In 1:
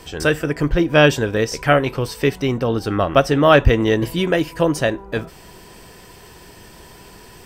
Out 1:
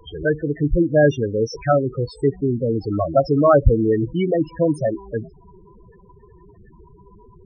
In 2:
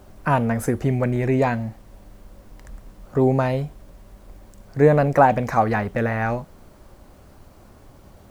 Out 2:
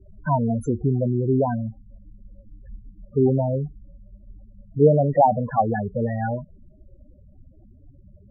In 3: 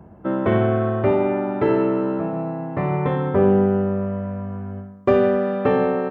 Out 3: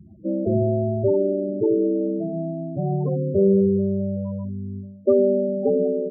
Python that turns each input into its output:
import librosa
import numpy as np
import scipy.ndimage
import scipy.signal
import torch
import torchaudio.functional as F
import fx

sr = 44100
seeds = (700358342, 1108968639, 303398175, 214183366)

y = fx.spec_topn(x, sr, count=8)